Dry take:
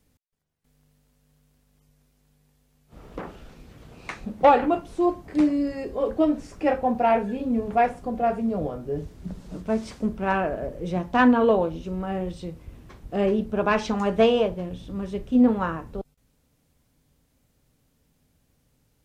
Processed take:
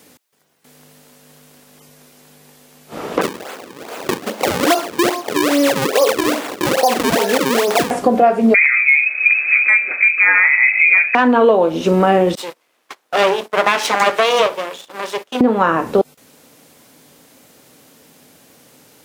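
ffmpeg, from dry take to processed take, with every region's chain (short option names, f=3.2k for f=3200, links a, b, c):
-filter_complex "[0:a]asettb=1/sr,asplit=3[a][b][c];[a]atrim=end=3.214[d];[b]atrim=start=3.21:end=7.91,asetpts=PTS-STARTPTS,afade=t=in:d=0.004:c=qsin,afade=t=out:st=4.696:d=0.004:c=qsin,highpass=480,acompressor=threshold=-29dB:ratio=4:attack=3.2:release=140:knee=1:detection=peak,acrusher=samples=37:mix=1:aa=0.000001:lfo=1:lforange=59.2:lforate=2.4[e];[c]atrim=start=7.906[f];[d][e]acrossfade=d=0.004:c1=hsin:c2=qsin[g];[g][f]acrossfade=d=0.004:c1=qsin:c2=hsin,asettb=1/sr,asplit=3[h][i][j];[h]atrim=end=8.544[k];[i]atrim=start=8.54:end=11.15,asetpts=PTS-STARTPTS,afade=t=in:d=0.004:c=qsin,afade=t=out:st=2.606:d=0.004:c=qsin,equalizer=f=1.6k:w=7.3:g=-14.5,aeval=exprs='clip(val(0),-1,0.106)':c=same,lowpass=f=2.2k:t=q:w=0.5098,lowpass=f=2.2k:t=q:w=0.6013,lowpass=f=2.2k:t=q:w=0.9,lowpass=f=2.2k:t=q:w=2.563,afreqshift=-2600[l];[j]atrim=start=11.146[m];[k][l]acrossfade=d=0.004:c1=hsin:c2=qsin[n];[n][m]acrossfade=d=0.004:c1=qsin:c2=hsin,asettb=1/sr,asplit=3[o][p][q];[o]atrim=end=12.354[r];[p]atrim=start=12.35:end=15.41,asetpts=PTS-STARTPTS,afade=t=in:d=0.004:c=qsin,afade=t=out:st=3.056:d=0.004:c=qsin,highpass=710,aeval=exprs='max(val(0),0)':c=same,agate=range=-21dB:threshold=-55dB:ratio=16:release=100:detection=peak[s];[q]atrim=start=15.406[t];[r][s]acrossfade=d=0.004:c1=hsin:c2=qsin[u];[u][t]acrossfade=d=0.004:c1=qsin:c2=hsin,highpass=300,acompressor=threshold=-32dB:ratio=12,alimiter=level_in=25dB:limit=-1dB:release=50:level=0:latency=1,volume=-1dB"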